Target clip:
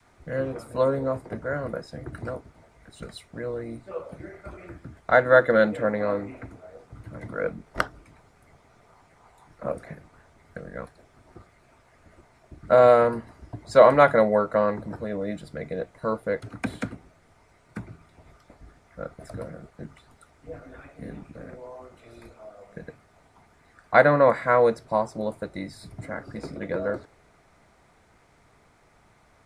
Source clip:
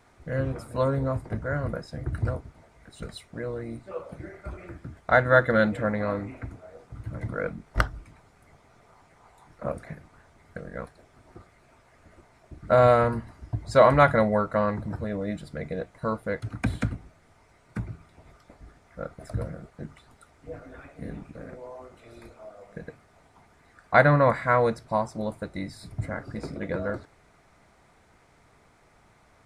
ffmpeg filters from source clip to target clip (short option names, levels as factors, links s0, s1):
-filter_complex "[0:a]adynamicequalizer=threshold=0.0224:dfrequency=470:dqfactor=1.4:tfrequency=470:tqfactor=1.4:attack=5:release=100:ratio=0.375:range=2.5:mode=boostabove:tftype=bell,acrossover=split=170|1400[s0][s1][s2];[s0]acompressor=threshold=0.00794:ratio=6[s3];[s3][s1][s2]amix=inputs=3:normalize=0"